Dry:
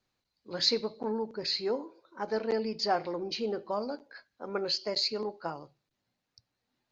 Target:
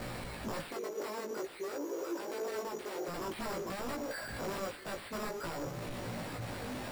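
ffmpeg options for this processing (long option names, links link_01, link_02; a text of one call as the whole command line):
ffmpeg -i in.wav -filter_complex "[0:a]aeval=exprs='val(0)+0.5*0.0224*sgn(val(0))':channel_layout=same,acompressor=threshold=-37dB:ratio=2.5,aeval=exprs='(mod(50.1*val(0)+1,2)-1)/50.1':channel_layout=same,asettb=1/sr,asplit=3[link_01][link_02][link_03];[link_01]atrim=end=0.704[link_04];[link_02]atrim=start=0.7:end=3.08,asetpts=PTS-STARTPTS,afade=type=in:duration=0.004:curve=qsin,afade=type=out:start_time=2.376:duration=0.004:curve=qsin,highpass=frequency=370:width_type=q:width=3.6[link_05];[link_03]atrim=start=3.076[link_06];[link_04][link_05]acrossfade=duration=0.004:curve1=hsin:curve2=qsin[link_07];[link_07][link_06]acrossfade=duration=0.004:curve1=qsin:curve2=hsin,alimiter=level_in=7.5dB:limit=-24dB:level=0:latency=1:release=458,volume=-7.5dB,lowpass=frequency=1400:poles=1,equalizer=frequency=570:width_type=o:width=0.21:gain=4.5,acrusher=samples=7:mix=1:aa=0.000001,flanger=delay=17:depth=2.2:speed=0.52,volume=4.5dB" out.wav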